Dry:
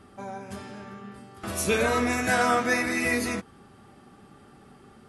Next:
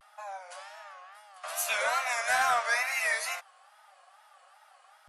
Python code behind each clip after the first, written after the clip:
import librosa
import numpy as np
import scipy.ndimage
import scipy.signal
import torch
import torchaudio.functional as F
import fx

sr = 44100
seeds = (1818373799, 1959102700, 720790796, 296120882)

y = scipy.signal.sosfilt(scipy.signal.butter(12, 590.0, 'highpass', fs=sr, output='sos'), x)
y = fx.wow_flutter(y, sr, seeds[0], rate_hz=2.1, depth_cents=130.0)
y = 10.0 ** (-15.0 / 20.0) * np.tanh(y / 10.0 ** (-15.0 / 20.0))
y = y * 10.0 ** (-1.0 / 20.0)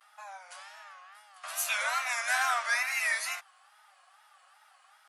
y = scipy.signal.sosfilt(scipy.signal.butter(2, 1000.0, 'highpass', fs=sr, output='sos'), x)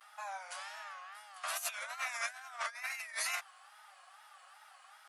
y = fx.over_compress(x, sr, threshold_db=-36.0, ratio=-0.5)
y = y * 10.0 ** (-3.0 / 20.0)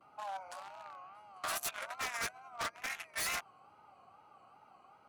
y = fx.wiener(x, sr, points=25)
y = fx.dmg_noise_band(y, sr, seeds[1], low_hz=77.0, high_hz=660.0, level_db=-78.0)
y = 10.0 ** (-35.0 / 20.0) * (np.abs((y / 10.0 ** (-35.0 / 20.0) + 3.0) % 4.0 - 2.0) - 1.0)
y = y * 10.0 ** (5.0 / 20.0)